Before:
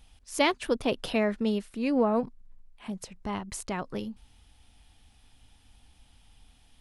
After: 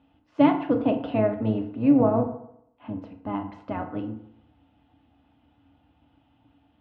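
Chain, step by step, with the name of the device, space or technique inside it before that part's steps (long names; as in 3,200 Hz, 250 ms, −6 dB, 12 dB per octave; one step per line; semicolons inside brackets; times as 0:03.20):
sub-octave bass pedal (sub-octave generator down 1 octave, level 0 dB; loudspeaker in its box 85–2,400 Hz, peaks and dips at 100 Hz −6 dB, 160 Hz −6 dB, 280 Hz +9 dB, 400 Hz −8 dB, 650 Hz +5 dB, 1,800 Hz −8 dB)
notch filter 2,300 Hz, Q 7.5
feedback delay network reverb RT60 0.74 s, low-frequency decay 0.9×, high-frequency decay 0.6×, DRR 3.5 dB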